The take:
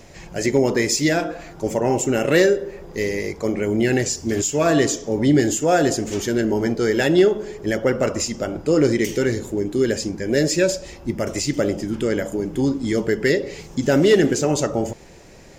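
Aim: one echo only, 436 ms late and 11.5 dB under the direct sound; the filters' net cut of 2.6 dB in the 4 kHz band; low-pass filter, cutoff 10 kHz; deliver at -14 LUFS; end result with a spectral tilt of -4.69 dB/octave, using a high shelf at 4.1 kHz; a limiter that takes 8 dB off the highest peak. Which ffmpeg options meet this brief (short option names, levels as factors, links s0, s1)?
-af "lowpass=10000,equalizer=f=4000:t=o:g=-6.5,highshelf=f=4100:g=4,alimiter=limit=0.211:level=0:latency=1,aecho=1:1:436:0.266,volume=2.99"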